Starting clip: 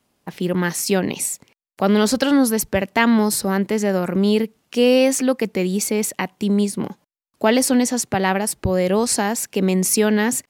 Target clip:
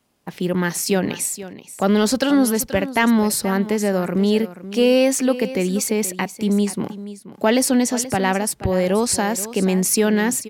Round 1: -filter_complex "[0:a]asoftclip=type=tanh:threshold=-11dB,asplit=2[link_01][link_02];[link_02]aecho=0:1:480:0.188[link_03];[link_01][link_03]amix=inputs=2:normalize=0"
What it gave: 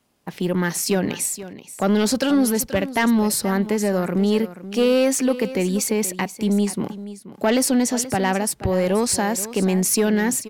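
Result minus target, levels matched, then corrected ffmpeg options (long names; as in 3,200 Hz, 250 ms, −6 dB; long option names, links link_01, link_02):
soft clipping: distortion +12 dB
-filter_complex "[0:a]asoftclip=type=tanh:threshold=-3dB,asplit=2[link_01][link_02];[link_02]aecho=0:1:480:0.188[link_03];[link_01][link_03]amix=inputs=2:normalize=0"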